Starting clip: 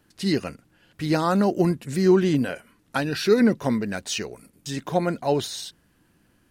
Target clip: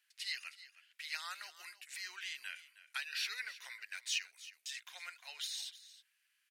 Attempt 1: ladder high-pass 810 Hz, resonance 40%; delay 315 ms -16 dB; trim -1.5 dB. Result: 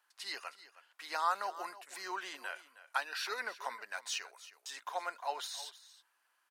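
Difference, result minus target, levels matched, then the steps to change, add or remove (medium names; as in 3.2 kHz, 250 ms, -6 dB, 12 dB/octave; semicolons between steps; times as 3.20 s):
1 kHz band +14.5 dB
change: ladder high-pass 1.8 kHz, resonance 40%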